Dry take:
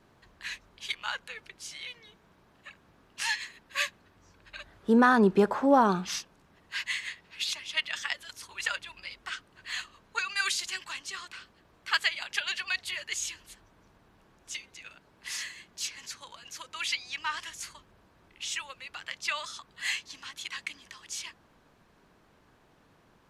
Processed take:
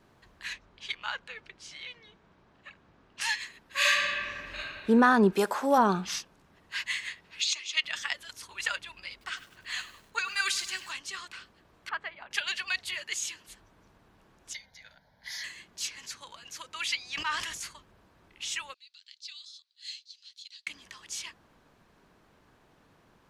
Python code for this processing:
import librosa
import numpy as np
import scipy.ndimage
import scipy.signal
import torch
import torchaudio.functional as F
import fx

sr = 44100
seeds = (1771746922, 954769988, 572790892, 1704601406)

y = fx.air_absorb(x, sr, metres=85.0, at=(0.53, 3.21))
y = fx.reverb_throw(y, sr, start_s=3.77, length_s=0.82, rt60_s=2.0, drr_db=-9.0)
y = fx.riaa(y, sr, side='recording', at=(5.32, 5.77), fade=0.02)
y = fx.cabinet(y, sr, low_hz=350.0, low_slope=24, high_hz=8500.0, hz=(590.0, 910.0, 1600.0, 2400.0, 4100.0, 6600.0), db=(-10, -7, -7, 4, 4, 9), at=(7.4, 7.82), fade=0.02)
y = fx.echo_crushed(y, sr, ms=100, feedback_pct=55, bits=8, wet_db=-14, at=(9.11, 10.91))
y = fx.lowpass(y, sr, hz=1100.0, slope=12, at=(11.89, 12.31))
y = fx.highpass(y, sr, hz=120.0, slope=12, at=(12.98, 13.48))
y = fx.fixed_phaser(y, sr, hz=1800.0, stages=8, at=(14.53, 15.44))
y = fx.sustainer(y, sr, db_per_s=43.0, at=(17.14, 17.66), fade=0.02)
y = fx.ladder_bandpass(y, sr, hz=4600.0, resonance_pct=65, at=(18.74, 20.67))